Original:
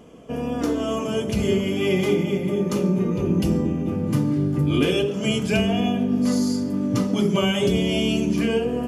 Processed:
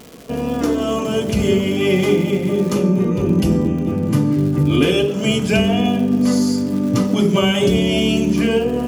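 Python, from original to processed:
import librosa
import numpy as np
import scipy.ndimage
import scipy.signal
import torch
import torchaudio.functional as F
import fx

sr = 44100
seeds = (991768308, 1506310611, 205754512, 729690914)

y = fx.dmg_crackle(x, sr, seeds[0], per_s=fx.steps((0.0, 350.0), (2.73, 46.0), (4.38, 200.0)), level_db=-33.0)
y = y * librosa.db_to_amplitude(5.0)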